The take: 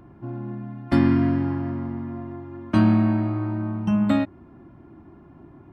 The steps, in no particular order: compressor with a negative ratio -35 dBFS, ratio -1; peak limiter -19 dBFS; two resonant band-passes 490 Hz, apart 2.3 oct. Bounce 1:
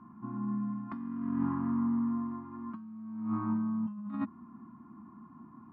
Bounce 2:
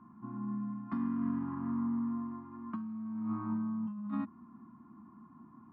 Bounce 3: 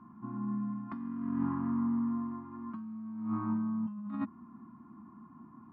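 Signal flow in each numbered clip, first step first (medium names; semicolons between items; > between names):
two resonant band-passes > compressor with a negative ratio > peak limiter; peak limiter > two resonant band-passes > compressor with a negative ratio; two resonant band-passes > peak limiter > compressor with a negative ratio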